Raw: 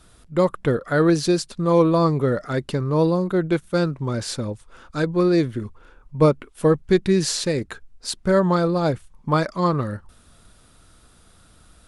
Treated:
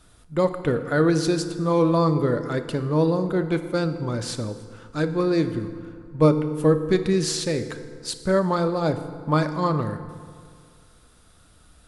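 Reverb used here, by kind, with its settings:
feedback delay network reverb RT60 2.1 s, low-frequency decay 0.95×, high-frequency decay 0.6×, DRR 8.5 dB
level −2.5 dB

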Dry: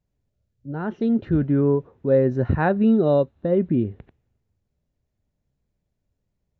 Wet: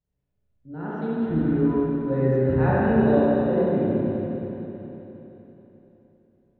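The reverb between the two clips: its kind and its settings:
spring reverb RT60 3.7 s, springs 31/38/60 ms, chirp 60 ms, DRR −9.5 dB
level −10 dB

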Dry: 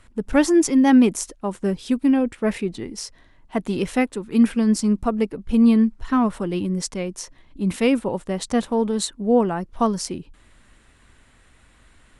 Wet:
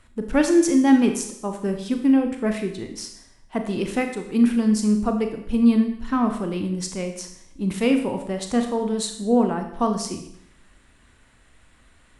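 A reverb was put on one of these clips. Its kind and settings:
four-comb reverb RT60 0.71 s, combs from 26 ms, DRR 5 dB
level −2.5 dB

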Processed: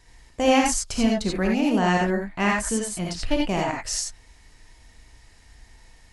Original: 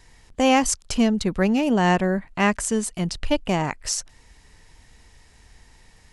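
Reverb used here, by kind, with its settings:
reverb whose tail is shaped and stops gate 110 ms rising, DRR −1 dB
level −4 dB

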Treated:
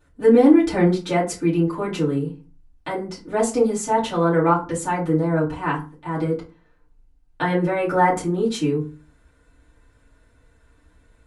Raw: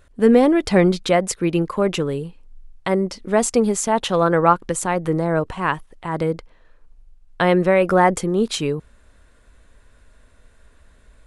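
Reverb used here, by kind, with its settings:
feedback delay network reverb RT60 0.33 s, low-frequency decay 1.5×, high-frequency decay 0.6×, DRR −9 dB
level −13 dB

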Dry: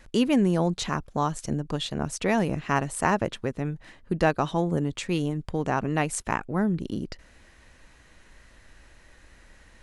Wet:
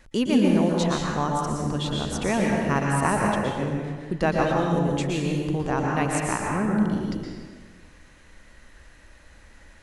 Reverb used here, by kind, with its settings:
dense smooth reverb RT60 1.5 s, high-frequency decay 0.7×, pre-delay 105 ms, DRR −1.5 dB
level −1.5 dB

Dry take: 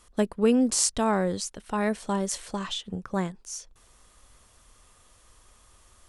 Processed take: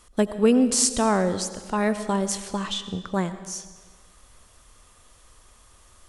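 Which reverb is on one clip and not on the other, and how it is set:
comb and all-pass reverb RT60 1.4 s, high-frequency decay 0.9×, pre-delay 50 ms, DRR 12 dB
level +3 dB

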